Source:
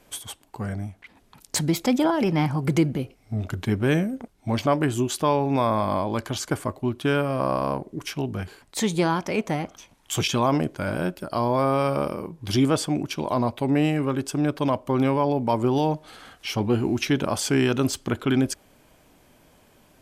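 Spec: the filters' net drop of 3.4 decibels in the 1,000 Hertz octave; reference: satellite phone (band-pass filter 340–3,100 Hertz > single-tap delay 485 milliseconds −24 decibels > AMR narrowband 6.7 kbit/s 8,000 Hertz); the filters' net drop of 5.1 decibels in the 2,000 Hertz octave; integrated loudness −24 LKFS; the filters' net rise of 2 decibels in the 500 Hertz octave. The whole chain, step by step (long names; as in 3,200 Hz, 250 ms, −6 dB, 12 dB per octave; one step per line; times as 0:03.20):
band-pass filter 340–3,100 Hz
parametric band 500 Hz +5.5 dB
parametric band 1,000 Hz −5 dB
parametric band 2,000 Hz −4.5 dB
single-tap delay 485 ms −24 dB
level +3 dB
AMR narrowband 6.7 kbit/s 8,000 Hz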